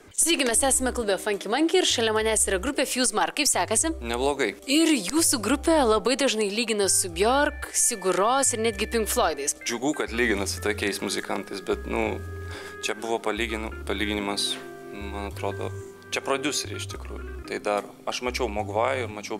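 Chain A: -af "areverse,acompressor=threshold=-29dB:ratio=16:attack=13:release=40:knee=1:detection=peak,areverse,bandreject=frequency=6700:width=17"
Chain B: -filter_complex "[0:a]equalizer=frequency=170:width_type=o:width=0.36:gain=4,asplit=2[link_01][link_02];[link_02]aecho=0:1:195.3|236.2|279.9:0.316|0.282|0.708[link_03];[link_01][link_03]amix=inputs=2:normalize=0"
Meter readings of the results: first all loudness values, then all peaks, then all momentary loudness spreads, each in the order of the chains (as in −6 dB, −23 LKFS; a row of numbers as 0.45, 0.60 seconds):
−30.5, −22.0 LKFS; −11.0, −7.0 dBFS; 6, 11 LU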